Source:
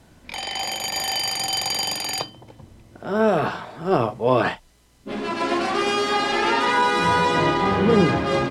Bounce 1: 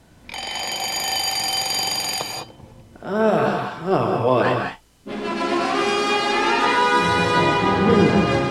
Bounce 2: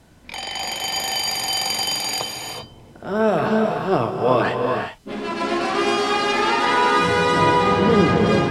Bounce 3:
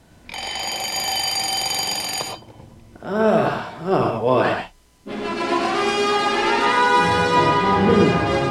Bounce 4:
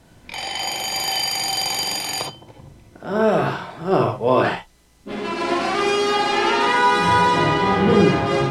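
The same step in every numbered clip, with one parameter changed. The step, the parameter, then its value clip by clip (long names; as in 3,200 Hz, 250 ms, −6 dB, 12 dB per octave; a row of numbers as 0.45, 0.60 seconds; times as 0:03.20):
reverb whose tail is shaped and stops, gate: 230, 420, 150, 90 milliseconds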